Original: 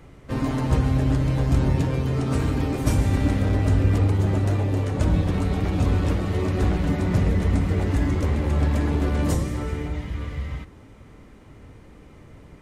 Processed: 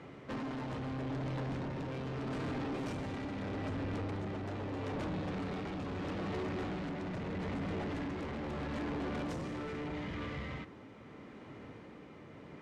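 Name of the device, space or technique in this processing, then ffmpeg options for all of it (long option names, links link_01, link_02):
AM radio: -af "highpass=170,lowpass=4200,acompressor=threshold=-27dB:ratio=6,asoftclip=type=tanh:threshold=-35.5dB,tremolo=f=0.78:d=0.28,volume=1dB"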